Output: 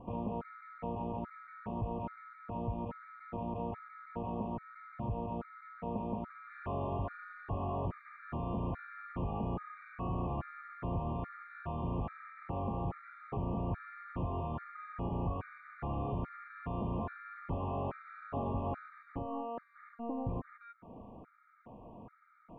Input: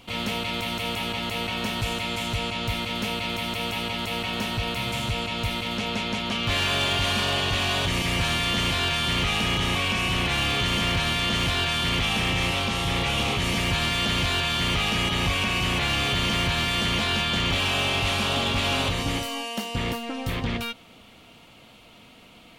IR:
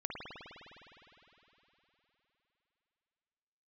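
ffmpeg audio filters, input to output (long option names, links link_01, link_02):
-af "lowpass=frequency=1200:width=0.5412,lowpass=frequency=1200:width=1.3066,acompressor=threshold=-43dB:ratio=2,afftfilt=real='re*gt(sin(2*PI*1.2*pts/sr)*(1-2*mod(floor(b*sr/1024/1200),2)),0)':imag='im*gt(sin(2*PI*1.2*pts/sr)*(1-2*mod(floor(b*sr/1024/1200),2)),0)':win_size=1024:overlap=0.75,volume=2.5dB"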